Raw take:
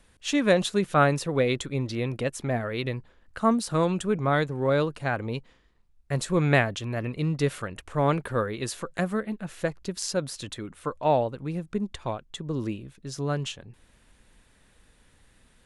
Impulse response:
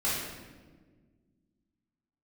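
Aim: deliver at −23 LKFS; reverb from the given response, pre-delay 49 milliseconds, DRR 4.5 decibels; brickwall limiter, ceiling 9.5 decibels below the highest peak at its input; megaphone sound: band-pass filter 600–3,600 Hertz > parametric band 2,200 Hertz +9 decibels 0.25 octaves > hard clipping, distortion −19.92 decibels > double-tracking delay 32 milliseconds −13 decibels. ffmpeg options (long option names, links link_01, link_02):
-filter_complex "[0:a]alimiter=limit=-17dB:level=0:latency=1,asplit=2[link_01][link_02];[1:a]atrim=start_sample=2205,adelay=49[link_03];[link_02][link_03]afir=irnorm=-1:irlink=0,volume=-13.5dB[link_04];[link_01][link_04]amix=inputs=2:normalize=0,highpass=600,lowpass=3600,equalizer=frequency=2200:width_type=o:width=0.25:gain=9,asoftclip=type=hard:threshold=-21dB,asplit=2[link_05][link_06];[link_06]adelay=32,volume=-13dB[link_07];[link_05][link_07]amix=inputs=2:normalize=0,volume=10dB"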